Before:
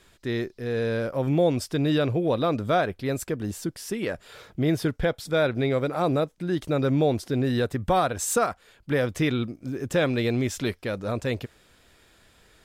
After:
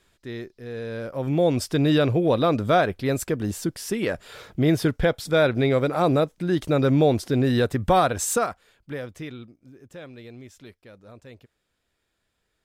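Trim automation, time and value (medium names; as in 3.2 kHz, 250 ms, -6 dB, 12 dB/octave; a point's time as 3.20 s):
0.87 s -6.5 dB
1.63 s +3.5 dB
8.16 s +3.5 dB
8.98 s -9 dB
9.82 s -18 dB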